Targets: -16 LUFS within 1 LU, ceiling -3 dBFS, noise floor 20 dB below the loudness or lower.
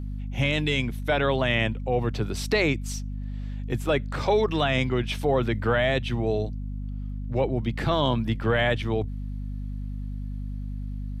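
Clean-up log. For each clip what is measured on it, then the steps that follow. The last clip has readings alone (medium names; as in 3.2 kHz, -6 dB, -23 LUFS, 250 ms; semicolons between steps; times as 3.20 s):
hum 50 Hz; highest harmonic 250 Hz; hum level -30 dBFS; loudness -26.5 LUFS; peak level -11.5 dBFS; loudness target -16.0 LUFS
-> hum notches 50/100/150/200/250 Hz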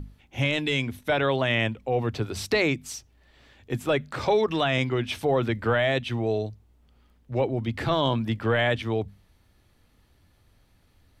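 hum not found; loudness -26.0 LUFS; peak level -12.0 dBFS; loudness target -16.0 LUFS
-> trim +10 dB; peak limiter -3 dBFS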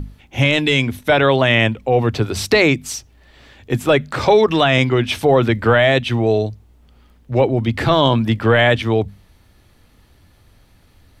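loudness -16.0 LUFS; peak level -3.0 dBFS; noise floor -52 dBFS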